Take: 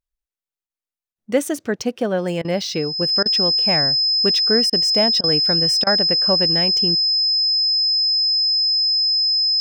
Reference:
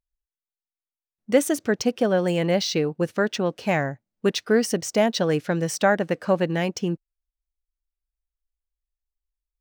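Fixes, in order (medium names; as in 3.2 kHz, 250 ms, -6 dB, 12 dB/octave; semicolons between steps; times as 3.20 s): band-stop 5.1 kHz, Q 30; interpolate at 0.67/1.13/2.42/3.23/4.70/5.21/5.84 s, 26 ms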